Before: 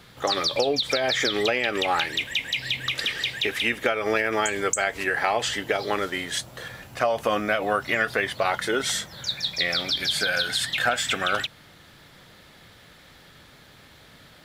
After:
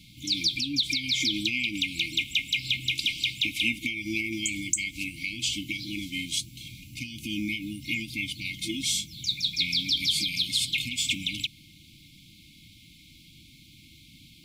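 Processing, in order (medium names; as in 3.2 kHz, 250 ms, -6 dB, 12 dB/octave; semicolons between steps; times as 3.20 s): FFT band-reject 340–2100 Hz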